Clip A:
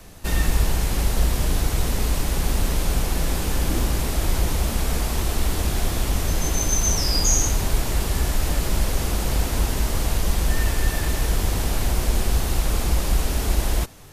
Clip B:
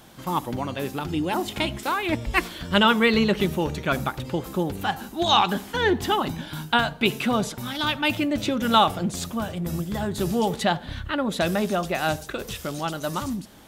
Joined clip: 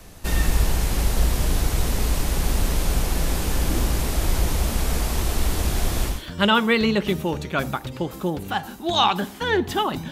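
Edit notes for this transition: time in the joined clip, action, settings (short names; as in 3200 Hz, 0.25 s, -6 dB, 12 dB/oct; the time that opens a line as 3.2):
clip A
6.14 switch to clip B from 2.47 s, crossfade 0.20 s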